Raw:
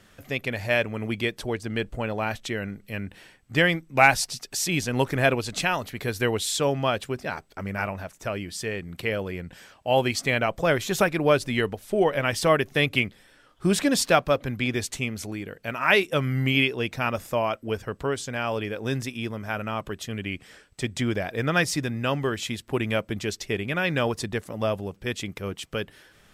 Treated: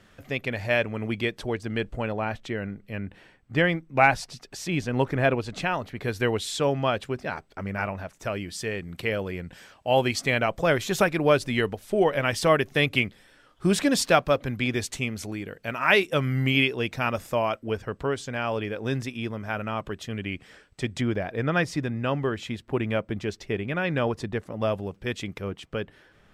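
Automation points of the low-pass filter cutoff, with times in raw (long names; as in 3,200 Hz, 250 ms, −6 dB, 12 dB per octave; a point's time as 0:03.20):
low-pass filter 6 dB per octave
4,300 Hz
from 0:02.12 1,800 Hz
from 0:06.04 3,700 Hz
from 0:08.17 9,500 Hz
from 0:17.59 4,000 Hz
from 0:21.01 1,800 Hz
from 0:24.62 4,000 Hz
from 0:25.44 1,800 Hz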